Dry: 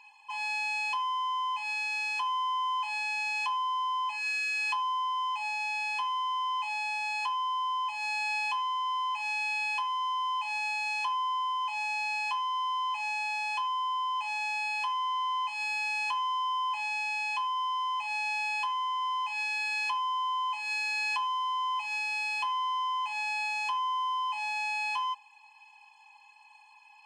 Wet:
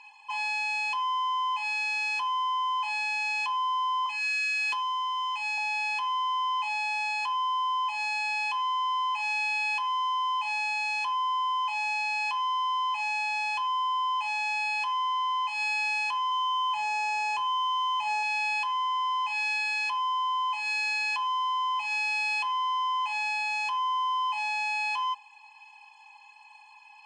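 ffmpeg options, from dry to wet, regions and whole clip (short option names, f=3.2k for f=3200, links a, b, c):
-filter_complex "[0:a]asettb=1/sr,asplit=3[a][b][c];[a]atrim=end=4.064[d];[b]atrim=start=4.06:end=5.58,asetpts=PTS-STARTPTS,afade=t=in:d=0.004:c=qsin,afade=t=out:st=1.516:d=0.004:c=qsin,highpass=1.1k,aeval=exprs='0.0501*(abs(mod(val(0)/0.0501+3,4)-2)-1)':c=same[e];[c]atrim=start=5.576[f];[d][e]acrossfade=d=0.004:c1=hsin:c2=qsin[g];[g][f]acrossfade=d=0.004:c1=qsin:c2=hsin,asettb=1/sr,asplit=3[h][i][j];[h]atrim=end=16.304[k];[i]atrim=start=16.3:end=18.23,asetpts=PTS-STARTPTS,afade=t=in:d=0.004:c=qsin,afade=t=out:st=1.926:d=0.004:c=qsin,lowshelf=f=400:g=11.5,asplit=2[l][m];[m]adelay=14,volume=-6dB[n];[l][n]amix=inputs=2:normalize=0,atrim=end_sample=85113[o];[j]atrim=start=18.226[p];[k][o]acrossfade=d=0.004:c1=hsin:c2=qsin[q];[q][p]acrossfade=d=0.004:c1=qsin:c2=hsin,lowpass=8.6k,acontrast=27,alimiter=limit=-22.5dB:level=0:latency=1,volume=-1dB"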